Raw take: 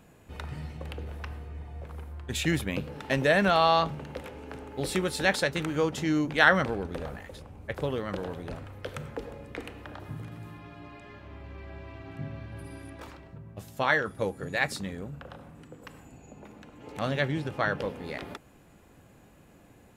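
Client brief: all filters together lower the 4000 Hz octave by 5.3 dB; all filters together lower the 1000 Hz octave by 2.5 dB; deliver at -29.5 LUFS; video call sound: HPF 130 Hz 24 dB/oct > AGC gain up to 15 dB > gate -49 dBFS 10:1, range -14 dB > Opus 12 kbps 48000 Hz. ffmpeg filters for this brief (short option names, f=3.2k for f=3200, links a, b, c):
-af "highpass=f=130:w=0.5412,highpass=f=130:w=1.3066,equalizer=f=1k:t=o:g=-3,equalizer=f=4k:t=o:g=-6.5,dynaudnorm=m=15dB,agate=range=-14dB:threshold=-49dB:ratio=10" -ar 48000 -c:a libopus -b:a 12k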